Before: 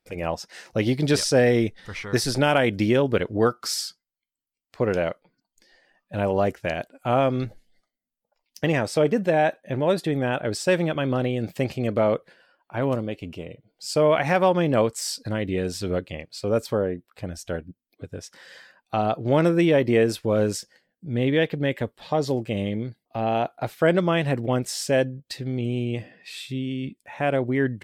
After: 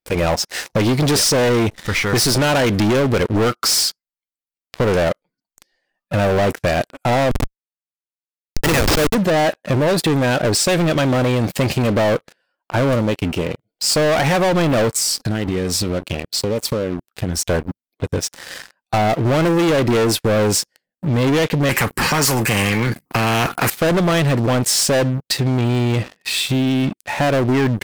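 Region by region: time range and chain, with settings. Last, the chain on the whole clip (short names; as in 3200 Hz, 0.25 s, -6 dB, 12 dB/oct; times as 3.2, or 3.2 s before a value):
7.31–9.15 weighting filter D + Schmitt trigger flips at -22.5 dBFS
14.94–17.42 compressor, threshold -32 dBFS + cascading phaser rising 1.1 Hz
21.69–23.7 bell 150 Hz +14.5 dB 2 oct + fixed phaser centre 1500 Hz, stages 4 + spectral compressor 4:1
whole clip: high shelf 5900 Hz +4.5 dB; sample leveller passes 5; compressor, threshold -13 dBFS; gain -1.5 dB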